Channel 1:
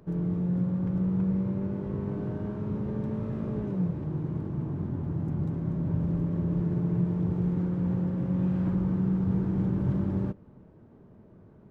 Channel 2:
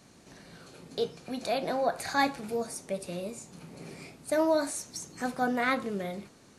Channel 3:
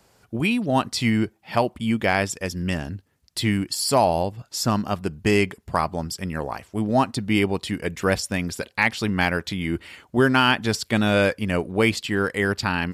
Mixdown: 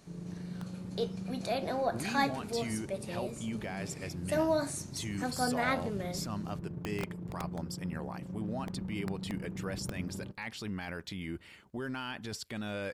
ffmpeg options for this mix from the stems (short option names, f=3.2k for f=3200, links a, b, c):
-filter_complex "[0:a]aeval=exprs='(mod(7.94*val(0)+1,2)-1)/7.94':c=same,tremolo=f=27:d=0.571,volume=-11dB[a];[1:a]aeval=exprs='0.237*(cos(1*acos(clip(val(0)/0.237,-1,1)))-cos(1*PI/2))+0.0015*(cos(8*acos(clip(val(0)/0.237,-1,1)))-cos(8*PI/2))':c=same,volume=-3.5dB[b];[2:a]alimiter=limit=-18dB:level=0:latency=1:release=11,adelay=1600,volume=-12dB[c];[a][b][c]amix=inputs=3:normalize=0"